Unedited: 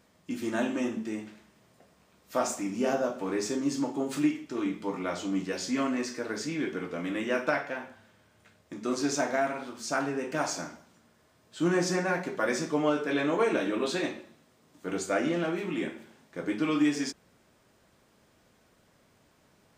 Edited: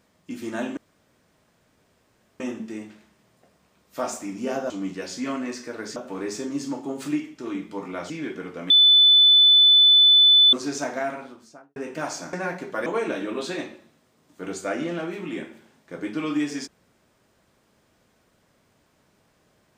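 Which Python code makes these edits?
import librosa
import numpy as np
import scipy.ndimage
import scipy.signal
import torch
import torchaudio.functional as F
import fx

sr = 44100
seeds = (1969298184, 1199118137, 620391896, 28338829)

y = fx.studio_fade_out(x, sr, start_s=9.46, length_s=0.67)
y = fx.edit(y, sr, fx.insert_room_tone(at_s=0.77, length_s=1.63),
    fx.move(start_s=5.21, length_s=1.26, to_s=3.07),
    fx.bleep(start_s=7.07, length_s=1.83, hz=3500.0, db=-11.0),
    fx.cut(start_s=10.7, length_s=1.28),
    fx.cut(start_s=12.51, length_s=0.8), tone=tone)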